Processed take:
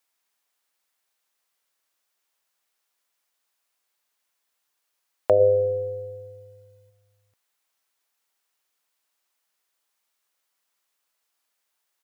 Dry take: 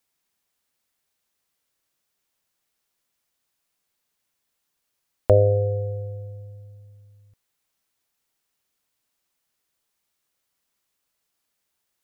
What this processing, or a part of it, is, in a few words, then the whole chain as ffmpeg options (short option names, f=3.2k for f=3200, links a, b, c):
filter by subtraction: -filter_complex "[0:a]asplit=3[a][b][c];[a]afade=t=out:st=5.39:d=0.02[d];[b]aecho=1:1:2:0.87,afade=t=in:st=5.39:d=0.02,afade=t=out:st=6.89:d=0.02[e];[c]afade=t=in:st=6.89:d=0.02[f];[d][e][f]amix=inputs=3:normalize=0,asplit=2[g][h];[h]lowpass=920,volume=-1[i];[g][i]amix=inputs=2:normalize=0"